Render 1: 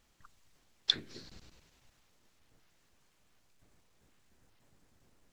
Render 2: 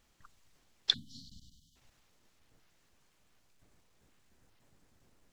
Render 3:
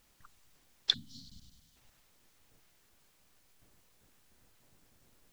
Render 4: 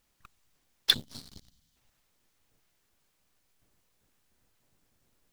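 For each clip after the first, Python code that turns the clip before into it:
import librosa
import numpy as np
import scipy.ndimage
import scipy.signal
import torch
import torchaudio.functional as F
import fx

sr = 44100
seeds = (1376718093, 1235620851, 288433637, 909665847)

y1 = fx.spec_erase(x, sr, start_s=0.94, length_s=0.82, low_hz=280.0, high_hz=2900.0)
y2 = fx.quant_dither(y1, sr, seeds[0], bits=12, dither='triangular')
y3 = fx.leveller(y2, sr, passes=3)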